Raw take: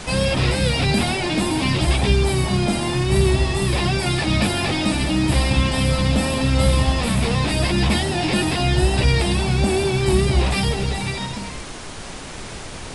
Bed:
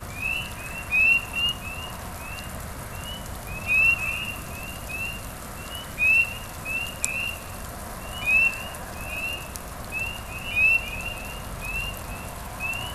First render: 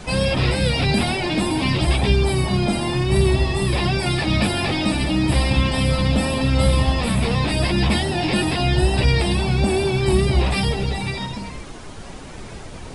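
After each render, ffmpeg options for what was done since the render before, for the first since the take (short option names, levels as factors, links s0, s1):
-af "afftdn=nr=8:nf=-34"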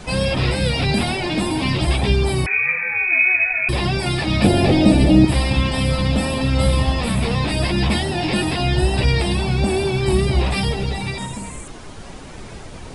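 -filter_complex "[0:a]asettb=1/sr,asplit=3[s0][s1][s2];[s0]atrim=end=2.464[s3];[s1]atrim=start=2.46:end=3.69,asetpts=PTS-STARTPTS,afade=t=in:d=0.004:c=qsin,afade=t=out:st=1.226:d=0.004:c=qsin,lowpass=f=2200:t=q:w=0.5098,lowpass=f=2200:t=q:w=0.6013,lowpass=f=2200:t=q:w=0.9,lowpass=f=2200:t=q:w=2.563,afreqshift=-2600[s4];[s2]atrim=start=3.686[s5];[s3][s4]acrossfade=d=0.004:c1=hsin:c2=qsin[s6];[s6][s5]acrossfade=d=0.004:c1=qsin:c2=hsin,asettb=1/sr,asplit=3[s7][s8][s9];[s7]atrim=end=4.444[s10];[s8]atrim=start=4.44:end=5.25,asetpts=PTS-STARTPTS,afade=t=in:d=0.004:c=qsin,afade=t=out:st=0.806:d=0.004:c=qsin,lowshelf=f=780:t=q:w=1.5:g=8[s11];[s9]atrim=start=5.246[s12];[s10][s11]acrossfade=d=0.004:c1=hsin:c2=qsin[s13];[s13][s12]acrossfade=d=0.004:c1=qsin:c2=hsin,asettb=1/sr,asplit=3[s14][s15][s16];[s14]atrim=end=11.184[s17];[s15]atrim=start=11.18:end=11.68,asetpts=PTS-STARTPTS,afade=t=in:d=0.004:c=qsin,afade=t=out:st=0.496:d=0.004:c=qsin,highshelf=f=6300:t=q:w=3:g=8[s18];[s16]atrim=start=11.676[s19];[s17][s18]acrossfade=d=0.004:c1=hsin:c2=qsin[s20];[s20][s19]acrossfade=d=0.004:c1=qsin:c2=hsin"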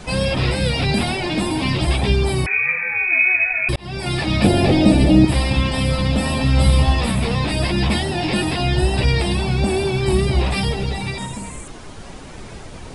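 -filter_complex "[0:a]asettb=1/sr,asplit=3[s0][s1][s2];[s0]atrim=end=6.244[s3];[s1]atrim=start=6.24:end=7.11,asetpts=PTS-STARTPTS,afade=t=in:d=0.004:c=qsin,afade=t=out:st=0.866:d=0.004:c=qsin,asplit=2[s4][s5];[s5]adelay=14,volume=0.631[s6];[s4][s6]amix=inputs=2:normalize=0,atrim=end_sample=38367[s7];[s2]atrim=start=7.106[s8];[s3][s7]acrossfade=d=0.004:c1=hsin:c2=qsin[s9];[s9][s8]acrossfade=d=0.004:c1=qsin:c2=hsin,asplit=2[s10][s11];[s10]atrim=end=3.76,asetpts=PTS-STARTPTS,afade=t=out:st=3.756:d=0.004:c=hsin[s12];[s11]atrim=start=3.76,asetpts=PTS-STARTPTS,afade=t=in:d=0.4[s13];[s12][s13]concat=n=2:v=0:a=1"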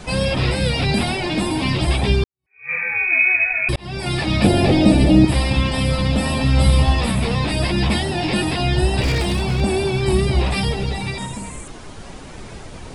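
-filter_complex "[0:a]asettb=1/sr,asplit=3[s0][s1][s2];[s0]atrim=end=9.014[s3];[s1]atrim=start=9.01:end=9.61,asetpts=PTS-STARTPTS,afade=t=in:d=0.004:c=qsin,afade=t=out:st=0.596:d=0.004:c=qsin,aeval=exprs='0.224*(abs(mod(val(0)/0.224+3,4)-2)-1)':c=same[s4];[s2]atrim=start=9.606[s5];[s3][s4]acrossfade=d=0.004:c1=hsin:c2=qsin[s6];[s6][s5]acrossfade=d=0.004:c1=qsin:c2=hsin,asplit=2[s7][s8];[s7]atrim=end=2.24,asetpts=PTS-STARTPTS,afade=t=out:st=2.236:d=0.004:c=hsin[s9];[s8]atrim=start=2.24,asetpts=PTS-STARTPTS,afade=t=in:d=0.49:c=exp[s10];[s9][s10]concat=n=2:v=0:a=1"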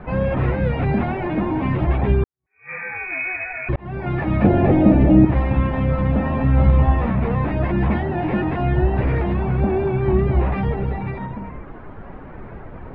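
-af "lowpass=f=1800:w=0.5412,lowpass=f=1800:w=1.3066"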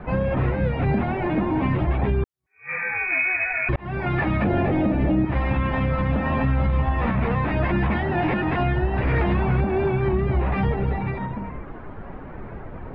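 -filter_complex "[0:a]acrossover=split=1000[s0][s1];[s1]dynaudnorm=f=350:g=17:m=2.11[s2];[s0][s2]amix=inputs=2:normalize=0,alimiter=limit=0.237:level=0:latency=1:release=243"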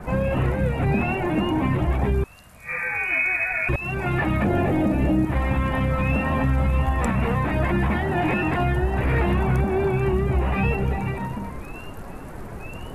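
-filter_complex "[1:a]volume=0.211[s0];[0:a][s0]amix=inputs=2:normalize=0"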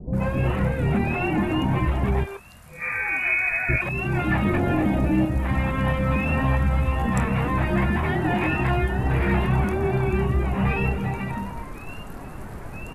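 -filter_complex "[0:a]asplit=2[s0][s1];[s1]adelay=25,volume=0.251[s2];[s0][s2]amix=inputs=2:normalize=0,acrossover=split=480[s3][s4];[s4]adelay=130[s5];[s3][s5]amix=inputs=2:normalize=0"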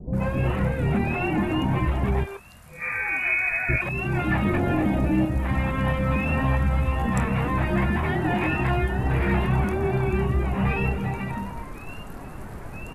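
-af "volume=0.891"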